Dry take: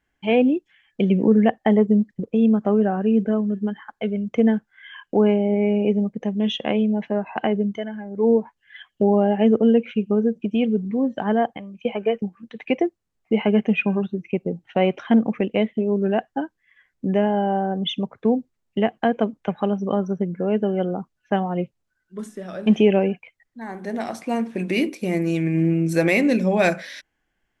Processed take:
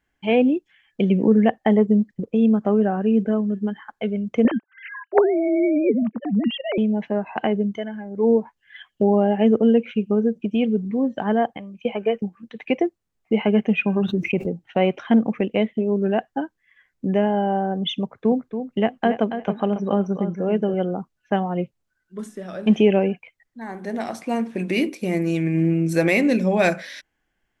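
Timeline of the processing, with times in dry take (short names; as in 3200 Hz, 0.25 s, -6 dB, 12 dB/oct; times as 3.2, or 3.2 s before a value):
4.45–6.78 sine-wave speech
13.96–14.46 fast leveller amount 70%
18.03–20.74 feedback echo 0.28 s, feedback 21%, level -9 dB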